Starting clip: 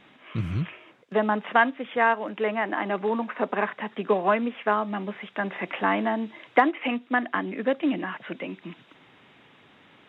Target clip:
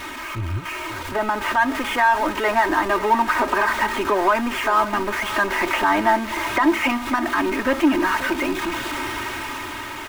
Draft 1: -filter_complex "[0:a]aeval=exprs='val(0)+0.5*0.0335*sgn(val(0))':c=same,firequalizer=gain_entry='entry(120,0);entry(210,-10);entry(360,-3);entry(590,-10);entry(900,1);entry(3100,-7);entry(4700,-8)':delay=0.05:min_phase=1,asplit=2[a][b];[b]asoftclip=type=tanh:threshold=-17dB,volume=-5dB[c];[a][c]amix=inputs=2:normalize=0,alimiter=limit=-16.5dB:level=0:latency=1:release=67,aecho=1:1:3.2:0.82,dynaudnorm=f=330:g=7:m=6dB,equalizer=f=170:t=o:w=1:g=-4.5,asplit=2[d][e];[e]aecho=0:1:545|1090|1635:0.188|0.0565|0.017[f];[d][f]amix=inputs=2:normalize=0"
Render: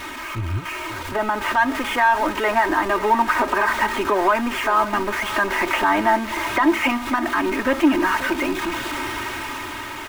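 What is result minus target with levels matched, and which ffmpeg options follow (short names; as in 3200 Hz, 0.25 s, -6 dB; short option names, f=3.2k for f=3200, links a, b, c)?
soft clip: distortion -8 dB
-filter_complex "[0:a]aeval=exprs='val(0)+0.5*0.0335*sgn(val(0))':c=same,firequalizer=gain_entry='entry(120,0);entry(210,-10);entry(360,-3);entry(590,-10);entry(900,1);entry(3100,-7);entry(4700,-8)':delay=0.05:min_phase=1,asplit=2[a][b];[b]asoftclip=type=tanh:threshold=-28dB,volume=-5dB[c];[a][c]amix=inputs=2:normalize=0,alimiter=limit=-16.5dB:level=0:latency=1:release=67,aecho=1:1:3.2:0.82,dynaudnorm=f=330:g=7:m=6dB,equalizer=f=170:t=o:w=1:g=-4.5,asplit=2[d][e];[e]aecho=0:1:545|1090|1635:0.188|0.0565|0.017[f];[d][f]amix=inputs=2:normalize=0"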